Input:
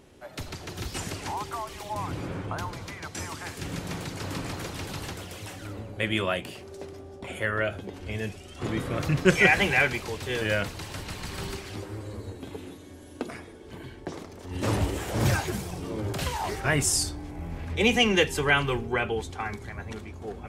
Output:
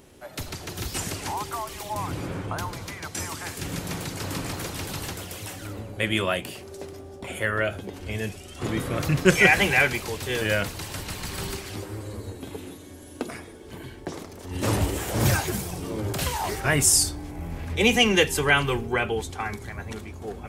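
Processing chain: high shelf 9000 Hz +11 dB; gain +2 dB

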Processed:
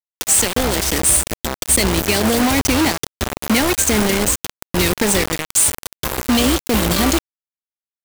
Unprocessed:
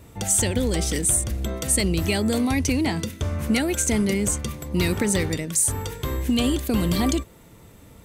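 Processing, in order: bell 120 Hz -14 dB 1.3 oct, from 0.85 s -7 dB; bit-crush 4-bit; gain +6 dB

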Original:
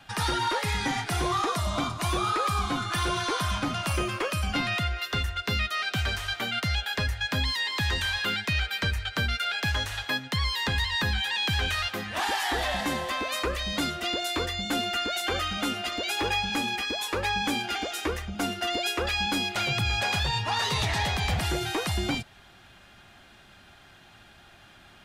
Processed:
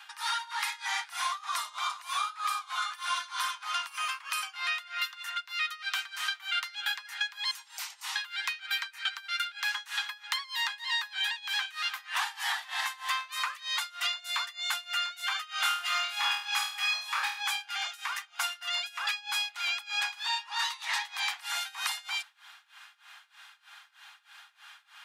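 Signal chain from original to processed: steep high-pass 880 Hz 48 dB/oct; 7.51–8.16 spectral gate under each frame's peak -20 dB weak; compressor, threshold -31 dBFS, peak gain reduction 7 dB; tremolo 3.2 Hz, depth 92%; 15.5–17.43 flutter echo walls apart 4.4 m, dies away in 0.47 s; gain +5 dB

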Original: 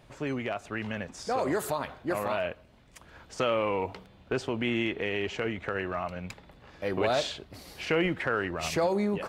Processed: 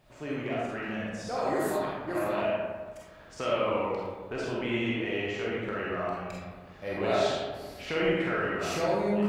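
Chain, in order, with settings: bit-crush 12-bit; digital reverb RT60 1.5 s, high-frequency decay 0.45×, pre-delay 5 ms, DRR -6 dB; gain -7 dB

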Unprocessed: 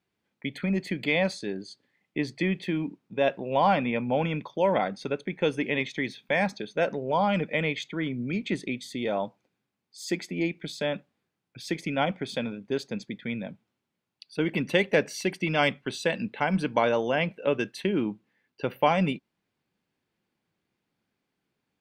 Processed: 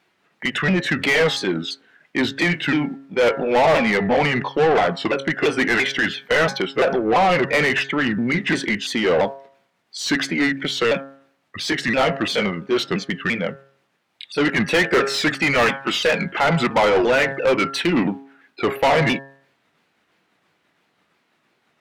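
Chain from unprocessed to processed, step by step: repeated pitch sweeps -4.5 st, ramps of 0.341 s; de-hum 136.7 Hz, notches 13; overdrive pedal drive 28 dB, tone 3100 Hz, clips at -8 dBFS

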